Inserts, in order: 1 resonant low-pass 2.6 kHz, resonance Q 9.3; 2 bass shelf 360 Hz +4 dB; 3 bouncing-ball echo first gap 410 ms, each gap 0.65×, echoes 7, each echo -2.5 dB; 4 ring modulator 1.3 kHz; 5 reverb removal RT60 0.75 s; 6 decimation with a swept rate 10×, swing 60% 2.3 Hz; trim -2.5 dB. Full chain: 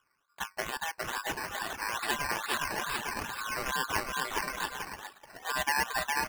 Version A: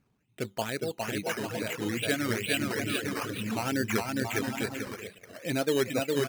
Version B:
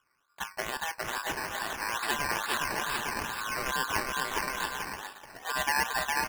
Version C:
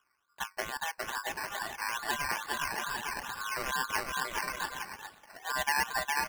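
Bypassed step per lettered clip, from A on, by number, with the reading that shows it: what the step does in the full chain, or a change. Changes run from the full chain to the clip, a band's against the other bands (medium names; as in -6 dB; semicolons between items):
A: 4, crest factor change -2.0 dB; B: 5, momentary loudness spread change -2 LU; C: 1, 250 Hz band -3.0 dB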